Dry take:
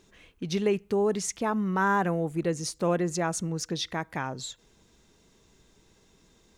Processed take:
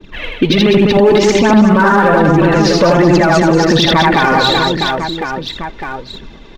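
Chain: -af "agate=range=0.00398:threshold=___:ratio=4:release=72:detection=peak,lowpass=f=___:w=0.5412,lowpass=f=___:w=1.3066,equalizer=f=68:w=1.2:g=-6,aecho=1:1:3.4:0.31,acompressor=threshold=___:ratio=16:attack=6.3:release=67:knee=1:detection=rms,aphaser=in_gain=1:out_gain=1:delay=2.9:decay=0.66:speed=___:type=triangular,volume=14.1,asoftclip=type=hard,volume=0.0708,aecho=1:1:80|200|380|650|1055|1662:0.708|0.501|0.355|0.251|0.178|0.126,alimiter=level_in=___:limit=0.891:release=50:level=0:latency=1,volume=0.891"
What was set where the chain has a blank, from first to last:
0.00126, 3800, 3800, 0.0398, 1.3, 25.1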